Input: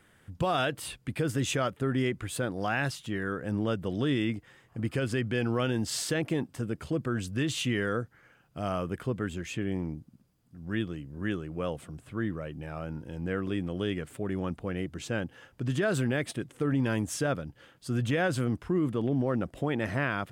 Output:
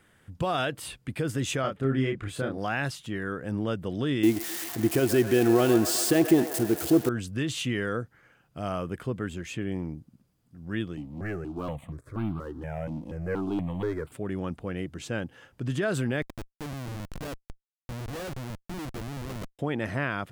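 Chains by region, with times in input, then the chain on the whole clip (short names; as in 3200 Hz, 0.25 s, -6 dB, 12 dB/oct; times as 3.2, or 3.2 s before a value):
1.61–2.58 high shelf 6100 Hz -12 dB + notch 930 Hz, Q 13 + doubler 30 ms -4 dB
4.23–7.09 switching spikes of -24.5 dBFS + small resonant body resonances 350/690 Hz, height 14 dB, ringing for 30 ms + band-limited delay 0.128 s, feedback 72%, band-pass 1100 Hz, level -7 dB
10.97–14.12 high shelf 2200 Hz -10 dB + sample leveller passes 2 + step phaser 4.2 Hz 410–1800 Hz
16.22–19.59 high shelf 5100 Hz -11.5 dB + level quantiser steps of 11 dB + Schmitt trigger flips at -35.5 dBFS
whole clip: dry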